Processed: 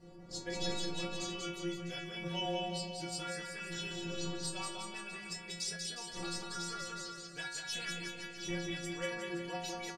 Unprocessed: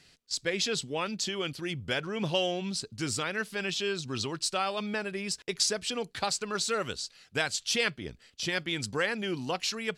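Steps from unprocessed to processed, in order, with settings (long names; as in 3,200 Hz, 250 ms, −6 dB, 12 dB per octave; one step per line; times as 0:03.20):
wind on the microphone 350 Hz −38 dBFS
stiff-string resonator 170 Hz, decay 0.75 s, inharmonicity 0.008
bouncing-ball delay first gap 190 ms, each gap 0.9×, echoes 5
level +5 dB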